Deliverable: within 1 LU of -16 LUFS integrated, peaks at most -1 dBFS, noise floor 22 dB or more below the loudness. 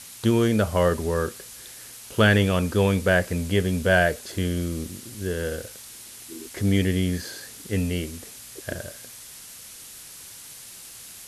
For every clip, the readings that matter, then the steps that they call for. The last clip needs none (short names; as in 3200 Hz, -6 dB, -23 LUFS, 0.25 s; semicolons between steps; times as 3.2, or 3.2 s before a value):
noise floor -43 dBFS; noise floor target -46 dBFS; loudness -24.0 LUFS; peak -6.0 dBFS; loudness target -16.0 LUFS
-> denoiser 6 dB, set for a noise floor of -43 dBFS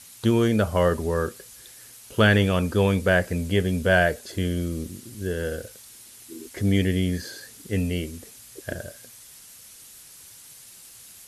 noise floor -47 dBFS; loudness -24.0 LUFS; peak -6.0 dBFS; loudness target -16.0 LUFS
-> gain +8 dB; limiter -1 dBFS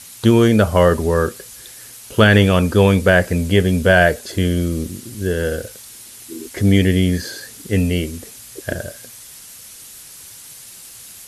loudness -16.5 LUFS; peak -1.0 dBFS; noise floor -39 dBFS